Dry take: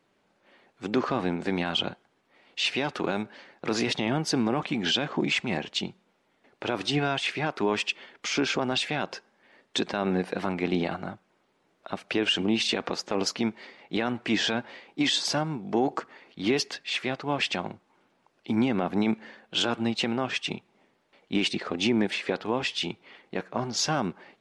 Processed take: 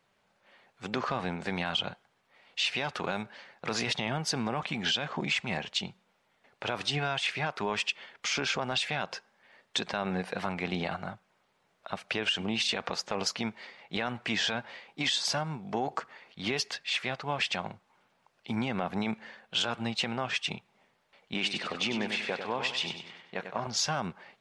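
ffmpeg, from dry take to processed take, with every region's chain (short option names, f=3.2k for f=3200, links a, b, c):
-filter_complex "[0:a]asettb=1/sr,asplit=3[a][b][c];[a]atrim=end=21.344[d];[b]atrim=start=21.34:end=23.67,asetpts=PTS-STARTPTS,afade=t=in:d=0.004:c=qsin,afade=t=out:st=2.326:d=0.004:c=qsin,highpass=f=210:p=1,highshelf=f=5.6k:g=-5,aecho=1:1:97|194|291|388|485:0.398|0.175|0.0771|0.0339|0.0149,atrim=end_sample=102753[e];[c]atrim=start=23.666[f];[d][e]acrossfade=d=0.004:c1=hsin:c2=qsin[g];[g][f]acrossfade=d=0.004:c1=qsin:c2=hsin,equalizer=f=310:t=o:w=0.93:g=-12,acompressor=threshold=-25dB:ratio=6"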